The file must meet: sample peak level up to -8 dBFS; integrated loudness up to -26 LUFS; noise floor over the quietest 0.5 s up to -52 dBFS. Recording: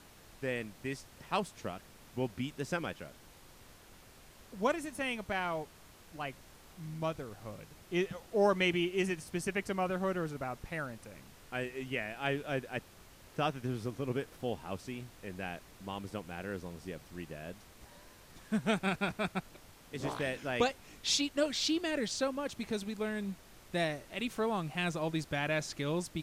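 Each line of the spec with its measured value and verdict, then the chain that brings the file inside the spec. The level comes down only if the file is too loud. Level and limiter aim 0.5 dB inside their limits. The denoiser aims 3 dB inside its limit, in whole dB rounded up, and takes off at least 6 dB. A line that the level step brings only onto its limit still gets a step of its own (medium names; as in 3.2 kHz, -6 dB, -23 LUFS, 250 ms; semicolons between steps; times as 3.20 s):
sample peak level -16.0 dBFS: pass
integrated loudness -36.0 LUFS: pass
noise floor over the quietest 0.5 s -57 dBFS: pass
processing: none needed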